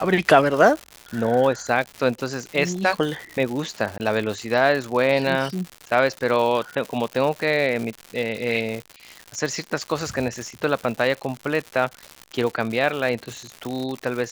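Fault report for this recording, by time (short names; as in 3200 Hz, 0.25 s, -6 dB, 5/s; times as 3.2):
crackle 170/s -27 dBFS
3.98–4 gap 19 ms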